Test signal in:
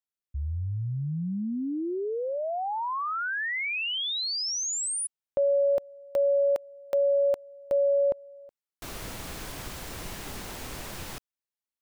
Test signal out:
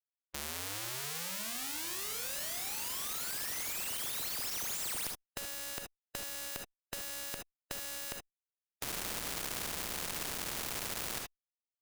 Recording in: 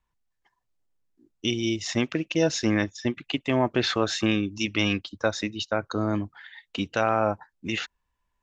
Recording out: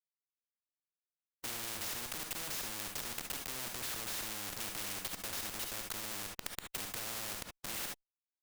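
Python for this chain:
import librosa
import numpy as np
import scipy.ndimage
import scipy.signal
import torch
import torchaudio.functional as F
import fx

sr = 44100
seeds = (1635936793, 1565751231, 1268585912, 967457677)

y = fx.schmitt(x, sr, flips_db=-35.5)
y = fx.rev_gated(y, sr, seeds[0], gate_ms=90, shape='rising', drr_db=5.5)
y = fx.spectral_comp(y, sr, ratio=4.0)
y = y * 10.0 ** (-2.0 / 20.0)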